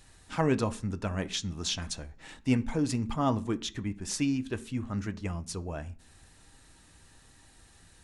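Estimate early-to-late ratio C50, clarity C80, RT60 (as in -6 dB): 21.0 dB, 25.0 dB, 0.45 s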